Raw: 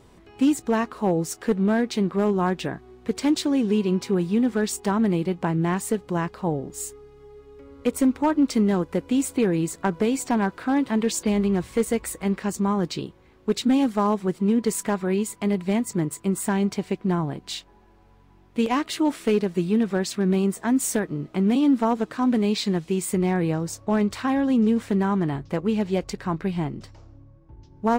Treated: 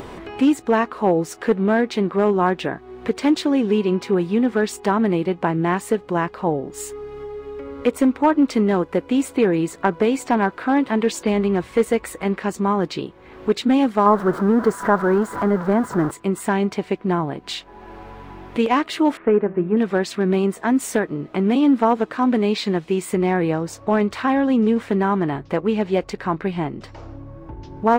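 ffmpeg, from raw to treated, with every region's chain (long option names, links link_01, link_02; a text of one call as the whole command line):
ffmpeg -i in.wav -filter_complex "[0:a]asettb=1/sr,asplit=3[link_01][link_02][link_03];[link_01]atrim=end=14.064[link_04];[link_02]atrim=start=14.06:end=16.11,asetpts=PTS-STARTPTS,afade=type=in:duration=0.004:curve=qsin,afade=type=out:start_time=2.046:duration=0.004:curve=qsin,aeval=exprs='val(0)+0.5*0.0422*sgn(val(0))':channel_layout=same,highshelf=frequency=1900:width_type=q:width=3:gain=-9[link_05];[link_03]atrim=start=16.106[link_06];[link_04][link_05]acrossfade=duration=0.004:curve1=hsin:curve2=qsin[link_07];[link_07][link_06]acrossfade=duration=0.004:curve1=qsin:curve2=hsin,asettb=1/sr,asplit=3[link_08][link_09][link_10];[link_08]atrim=end=19.174[link_11];[link_09]atrim=start=19.17:end=19.77,asetpts=PTS-STARTPTS,afade=type=in:duration=0.004:curve=qsin,afade=type=out:start_time=0.596:duration=0.004:curve=qsin,lowpass=frequency=1800:width=0.5412,lowpass=frequency=1800:width=1.3066,bandreject=frequency=192.3:width_type=h:width=4,bandreject=frequency=384.6:width_type=h:width=4,bandreject=frequency=576.9:width_type=h:width=4,bandreject=frequency=769.2:width_type=h:width=4,bandreject=frequency=961.5:width_type=h:width=4,bandreject=frequency=1153.8:width_type=h:width=4,bandreject=frequency=1346.1:width_type=h:width=4,bandreject=frequency=1538.4:width_type=h:width=4,bandreject=frequency=1730.7:width_type=h:width=4,bandreject=frequency=1923:width_type=h:width=4,bandreject=frequency=2115.3:width_type=h:width=4,bandreject=frequency=2307.6:width_type=h:width=4,bandreject=frequency=2499.9:width_type=h:width=4,bandreject=frequency=2692.2:width_type=h:width=4,bandreject=frequency=2884.5:width_type=h:width=4,bandreject=frequency=3076.8:width_type=h:width=4,bandreject=frequency=3269.1:width_type=h:width=4,bandreject=frequency=3461.4:width_type=h:width=4,bandreject=frequency=3653.7:width_type=h:width=4,bandreject=frequency=3846:width_type=h:width=4,bandreject=frequency=4038.3:width_type=h:width=4,bandreject=frequency=4230.6:width_type=h:width=4,bandreject=frequency=4422.9:width_type=h:width=4,bandreject=frequency=4615.2:width_type=h:width=4,bandreject=frequency=4807.5:width_type=h:width=4,bandreject=frequency=4999.8:width_type=h:width=4,bandreject=frequency=5192.1:width_type=h:width=4,bandreject=frequency=5384.4:width_type=h:width=4,bandreject=frequency=5576.7:width_type=h:width=4,bandreject=frequency=5769:width_type=h:width=4,bandreject=frequency=5961.3:width_type=h:width=4,bandreject=frequency=6153.6:width_type=h:width=4,bandreject=frequency=6345.9:width_type=h:width=4,bandreject=frequency=6538.2:width_type=h:width=4,bandreject=frequency=6730.5:width_type=h:width=4,bandreject=frequency=6922.8:width_type=h:width=4[link_12];[link_10]atrim=start=19.766[link_13];[link_11][link_12]acrossfade=duration=0.004:curve1=hsin:curve2=qsin[link_14];[link_14][link_13]acrossfade=duration=0.004:curve1=qsin:curve2=hsin,bass=frequency=250:gain=-8,treble=frequency=4000:gain=-11,acompressor=mode=upward:threshold=-30dB:ratio=2.5,volume=6.5dB" out.wav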